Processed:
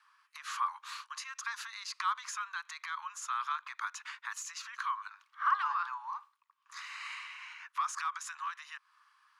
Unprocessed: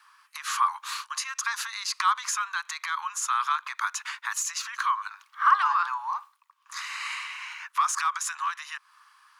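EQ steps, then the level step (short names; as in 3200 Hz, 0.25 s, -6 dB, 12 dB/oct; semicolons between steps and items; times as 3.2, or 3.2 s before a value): HPF 780 Hz 12 dB/oct; high shelf 7800 Hz -11.5 dB; -8.0 dB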